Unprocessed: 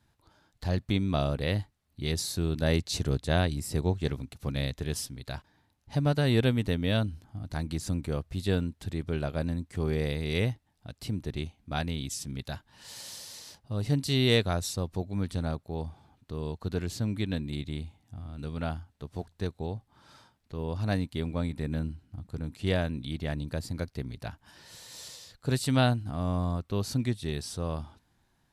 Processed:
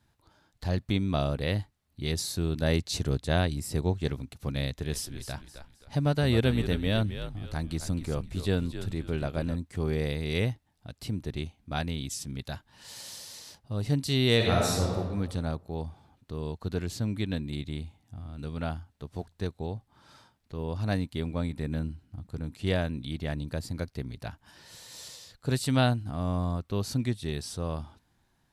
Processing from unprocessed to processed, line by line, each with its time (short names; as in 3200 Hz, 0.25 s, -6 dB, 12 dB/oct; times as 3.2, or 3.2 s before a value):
4.66–9.56 frequency-shifting echo 0.263 s, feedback 33%, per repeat -68 Hz, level -10 dB
14.36–14.96 reverb throw, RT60 1.4 s, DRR -3.5 dB